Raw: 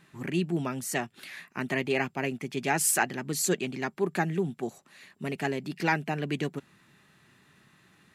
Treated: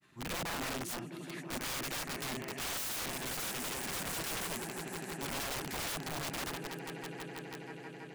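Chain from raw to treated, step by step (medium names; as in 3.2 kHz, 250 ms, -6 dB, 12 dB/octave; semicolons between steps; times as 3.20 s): granulator 100 ms, grains 21 per s; echo with a slow build-up 163 ms, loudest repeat 5, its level -17 dB; integer overflow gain 30 dB; trim -3 dB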